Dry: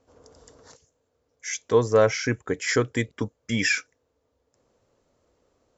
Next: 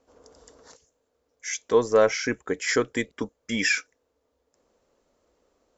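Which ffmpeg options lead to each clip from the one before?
-af "equalizer=f=110:w=1.8:g=-13"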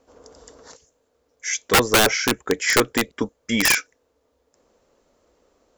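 -af "aeval=exprs='(mod(5.62*val(0)+1,2)-1)/5.62':c=same,volume=6dB"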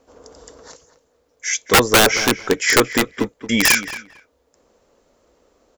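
-filter_complex "[0:a]asplit=2[a][b];[b]adelay=225,lowpass=f=3k:p=1,volume=-13dB,asplit=2[c][d];[d]adelay=225,lowpass=f=3k:p=1,volume=0.17[e];[a][c][e]amix=inputs=3:normalize=0,volume=3.5dB"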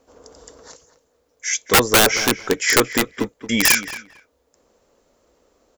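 -af "highshelf=f=7.7k:g=5,volume=-2dB"

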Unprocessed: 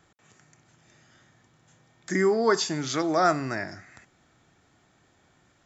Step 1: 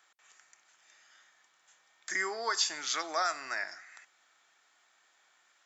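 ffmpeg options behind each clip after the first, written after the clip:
-filter_complex "[0:a]highpass=1.1k,acrossover=split=2600[a][b];[a]alimiter=limit=-22dB:level=0:latency=1:release=177[c];[c][b]amix=inputs=2:normalize=0"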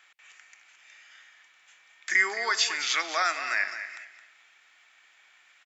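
-filter_complex "[0:a]equalizer=f=2.4k:w=1.2:g=14,asplit=2[a][b];[b]aecho=0:1:217|434|651:0.282|0.0733|0.0191[c];[a][c]amix=inputs=2:normalize=0"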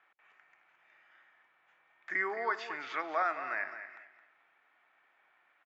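-af "lowpass=1.1k"

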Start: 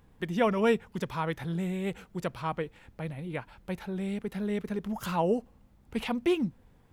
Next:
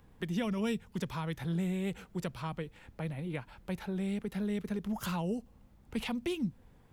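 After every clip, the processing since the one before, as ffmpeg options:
-filter_complex "[0:a]acrossover=split=230|3000[a][b][c];[b]acompressor=threshold=-38dB:ratio=6[d];[a][d][c]amix=inputs=3:normalize=0"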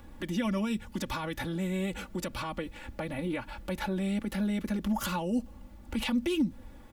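-af "alimiter=level_in=9dB:limit=-24dB:level=0:latency=1:release=71,volume=-9dB,aecho=1:1:3.5:0.8,volume=8.5dB"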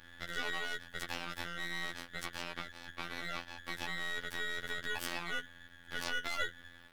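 -af "aeval=exprs='val(0)*sin(2*PI*1700*n/s)':c=same,afftfilt=real='hypot(re,im)*cos(PI*b)':imag='0':win_size=2048:overlap=0.75,aeval=exprs='max(val(0),0)':c=same,volume=1.5dB"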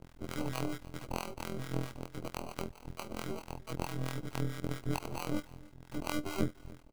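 -filter_complex "[0:a]acrusher=samples=25:mix=1:aa=0.000001,acrossover=split=790[a][b];[a]aeval=exprs='val(0)*(1-0.7/2+0.7/2*cos(2*PI*4.5*n/s))':c=same[c];[b]aeval=exprs='val(0)*(1-0.7/2-0.7/2*cos(2*PI*4.5*n/s))':c=same[d];[c][d]amix=inputs=2:normalize=0,aecho=1:1:300:0.0708,volume=5.5dB"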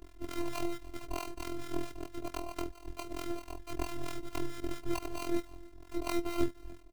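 -filter_complex "[0:a]asplit=2[a][b];[b]acrusher=samples=42:mix=1:aa=0.000001:lfo=1:lforange=67.2:lforate=0.3,volume=-10dB[c];[a][c]amix=inputs=2:normalize=0,afftfilt=real='hypot(re,im)*cos(PI*b)':imag='0':win_size=512:overlap=0.75,volume=3dB"

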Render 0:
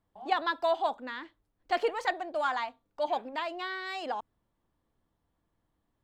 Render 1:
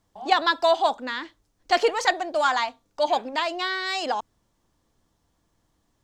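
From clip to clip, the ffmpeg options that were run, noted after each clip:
-af "equalizer=f=6.1k:t=o:w=1.2:g=11.5,volume=7.5dB"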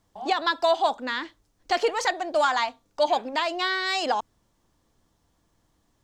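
-af "alimiter=limit=-13.5dB:level=0:latency=1:release=271,volume=1.5dB"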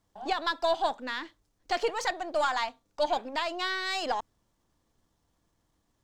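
-af "aeval=exprs='if(lt(val(0),0),0.708*val(0),val(0))':c=same,volume=-4dB"

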